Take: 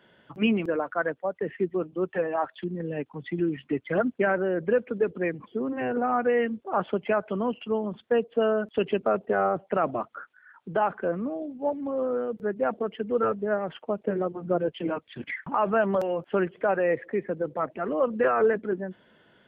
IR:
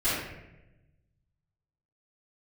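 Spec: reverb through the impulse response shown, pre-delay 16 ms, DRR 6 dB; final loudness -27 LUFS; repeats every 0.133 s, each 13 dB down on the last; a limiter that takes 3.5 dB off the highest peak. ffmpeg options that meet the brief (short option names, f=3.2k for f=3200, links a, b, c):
-filter_complex "[0:a]alimiter=limit=-16.5dB:level=0:latency=1,aecho=1:1:133|266|399:0.224|0.0493|0.0108,asplit=2[a][b];[1:a]atrim=start_sample=2205,adelay=16[c];[b][c]afir=irnorm=-1:irlink=0,volume=-18dB[d];[a][d]amix=inputs=2:normalize=0,volume=0.5dB"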